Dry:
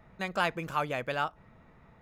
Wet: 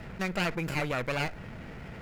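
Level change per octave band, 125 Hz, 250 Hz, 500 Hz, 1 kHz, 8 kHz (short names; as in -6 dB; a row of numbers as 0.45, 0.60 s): +7.0, +6.0, +0.5, -4.5, +6.5 dB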